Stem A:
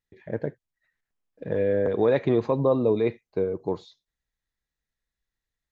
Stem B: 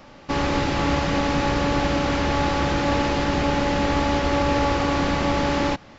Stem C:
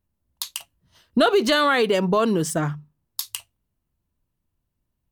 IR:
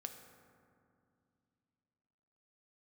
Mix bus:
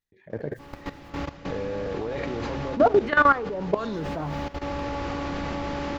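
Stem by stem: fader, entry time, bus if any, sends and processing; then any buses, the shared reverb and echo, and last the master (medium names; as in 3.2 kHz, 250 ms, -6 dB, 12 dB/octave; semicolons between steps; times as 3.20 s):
2.02 s -1 dB -> 2.33 s -8.5 dB, 0.00 s, no send, decay stretcher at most 35 dB/s
-1.5 dB, 0.30 s, send -16 dB, treble shelf 4 kHz -5.5 dB; auto duck -9 dB, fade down 0.55 s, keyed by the first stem
-1.0 dB, 1.60 s, send -18 dB, LFO low-pass saw down 1.4 Hz 610–2100 Hz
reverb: on, RT60 2.4 s, pre-delay 3 ms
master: de-hum 130 Hz, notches 34; level held to a coarse grid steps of 15 dB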